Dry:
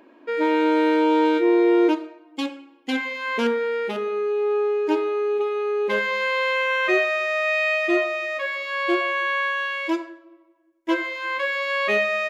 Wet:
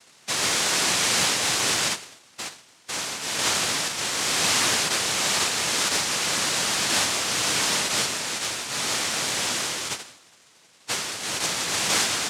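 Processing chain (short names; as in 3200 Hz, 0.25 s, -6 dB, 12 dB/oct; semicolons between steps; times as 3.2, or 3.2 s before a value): elliptic high-pass 410 Hz; added noise pink -53 dBFS; noise vocoder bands 1; gain -1 dB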